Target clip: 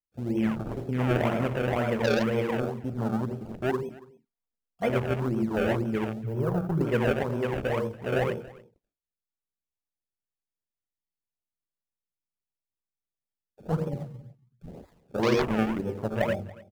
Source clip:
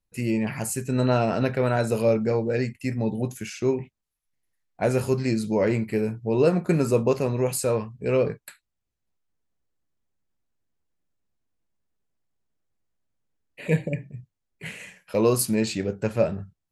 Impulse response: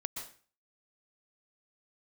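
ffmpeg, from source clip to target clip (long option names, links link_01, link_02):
-filter_complex "[1:a]atrim=start_sample=2205,asetrate=66150,aresample=44100[link_01];[0:a][link_01]afir=irnorm=-1:irlink=0,acrusher=samples=30:mix=1:aa=0.000001:lfo=1:lforange=30:lforate=2,asettb=1/sr,asplit=3[link_02][link_03][link_04];[link_02]atrim=end=6.234[link_05];[link_03]atrim=start=6.23:end=6.81,asetpts=PTS-STARTPTS,afade=type=in:duration=0.004:curve=qsin,afade=type=out:start_time=0.576:duration=0.004:curve=qsin,equalizer=frequency=125:width_type=o:width=1:gain=7,equalizer=frequency=250:width_type=o:width=1:gain=-9,equalizer=frequency=500:width_type=o:width=1:gain=-4,equalizer=frequency=1000:width_type=o:width=1:gain=-3,equalizer=frequency=2000:width_type=o:width=1:gain=-6,equalizer=frequency=4000:width_type=o:width=1:gain=-9,equalizer=frequency=8000:width_type=o:width=1:gain=-9[link_06];[link_04]atrim=start=6.806[link_07];[link_05][link_06]acrossfade=duration=0.004:curve1=hsin:curve2=qsin[link_08];[link_08][link_07]acrossfade=duration=0.004:curve1=qsin:curve2=hsin,afwtdn=0.0178,asettb=1/sr,asplit=3[link_09][link_10][link_11];[link_09]atrim=end=3.824[link_12];[link_10]atrim=start=3.82:end=4.9,asetpts=PTS-STARTPTS,afade=type=in:duration=0.004:curve=qsin,afade=type=out:start_time=1.076:duration=0.004:curve=qsin,aecho=1:1:4.3:0.81,atrim=end_sample=47628[link_13];[link_11]atrim=start=4.896[link_14];[link_12][link_13]acrossfade=duration=0.004:curve1=hsin:curve2=qsin[link_15];[link_15][link_14]acrossfade=duration=0.004:curve1=qsin:curve2=hsin,aecho=1:1:281:0.0891"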